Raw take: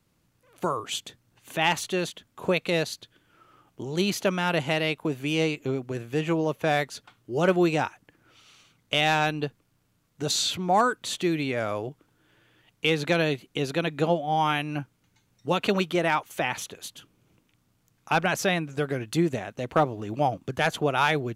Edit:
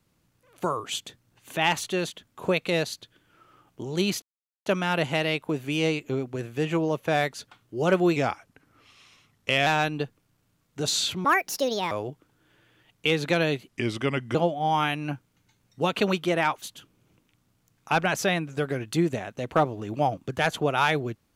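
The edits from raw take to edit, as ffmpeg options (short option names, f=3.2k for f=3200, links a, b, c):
-filter_complex "[0:a]asplit=9[a][b][c][d][e][f][g][h][i];[a]atrim=end=4.22,asetpts=PTS-STARTPTS,afade=t=out:st=4.216:d=0.004:c=hsin,apad=pad_dur=0.44[j];[b]atrim=start=4.22:end=7.724,asetpts=PTS-STARTPTS,afade=t=in:d=0.004:c=hsin[k];[c]atrim=start=7.72:end=9.09,asetpts=PTS-STARTPTS,asetrate=40131,aresample=44100,atrim=end_sample=66392,asetpts=PTS-STARTPTS[l];[d]atrim=start=9.086:end=10.674[m];[e]atrim=start=10.67:end=11.7,asetpts=PTS-STARTPTS,asetrate=68355,aresample=44100,atrim=end_sample=29305,asetpts=PTS-STARTPTS[n];[f]atrim=start=11.696:end=13.484[o];[g]atrim=start=13.48:end=14.02,asetpts=PTS-STARTPTS,asetrate=36162,aresample=44100,atrim=end_sample=29041,asetpts=PTS-STARTPTS[p];[h]atrim=start=14.016:end=16.292[q];[i]atrim=start=16.818[r];[j][k]concat=n=2:v=0:a=1[s];[s][l]acrossfade=d=0.004:c1=hsin:c2=hsin[t];[t][m]acrossfade=d=0.004:c1=hsin:c2=hsin[u];[u][n]acrossfade=d=0.004:c1=hsin:c2=hsin[v];[v][o]acrossfade=d=0.004:c1=hsin:c2=hsin[w];[w][p]acrossfade=d=0.004:c1=hsin:c2=hsin[x];[x][q]acrossfade=d=0.004:c1=hsin:c2=hsin[y];[y][r]acrossfade=d=0.004:c1=hsin:c2=hsin"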